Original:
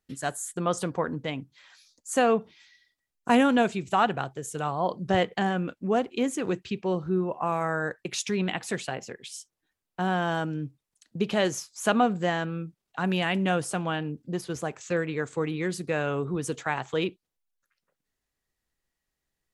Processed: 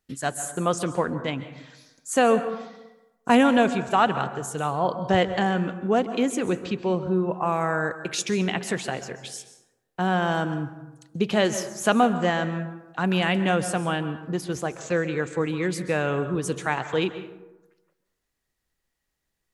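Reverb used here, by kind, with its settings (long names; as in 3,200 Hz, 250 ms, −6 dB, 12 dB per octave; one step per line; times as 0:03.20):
dense smooth reverb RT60 1 s, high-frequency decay 0.45×, pre-delay 120 ms, DRR 11 dB
level +3 dB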